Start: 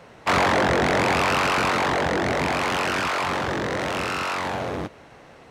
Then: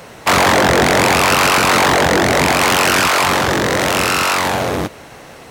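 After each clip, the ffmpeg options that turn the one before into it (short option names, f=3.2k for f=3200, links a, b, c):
-af "aemphasis=mode=production:type=50fm,alimiter=level_in=11dB:limit=-1dB:release=50:level=0:latency=1,volume=-1dB"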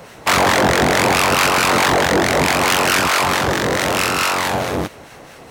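-filter_complex "[0:a]acrossover=split=1100[a][b];[a]aeval=exprs='val(0)*(1-0.5/2+0.5/2*cos(2*PI*4.6*n/s))':c=same[c];[b]aeval=exprs='val(0)*(1-0.5/2-0.5/2*cos(2*PI*4.6*n/s))':c=same[d];[c][d]amix=inputs=2:normalize=0"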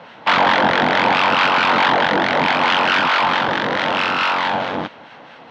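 -af "highpass=180,equalizer=f=230:t=q:w=4:g=3,equalizer=f=390:t=q:w=4:g=-7,equalizer=f=900:t=q:w=4:g=6,equalizer=f=1.5k:t=q:w=4:g=4,equalizer=f=3.2k:t=q:w=4:g=5,lowpass=f=4.1k:w=0.5412,lowpass=f=4.1k:w=1.3066,volume=-2dB"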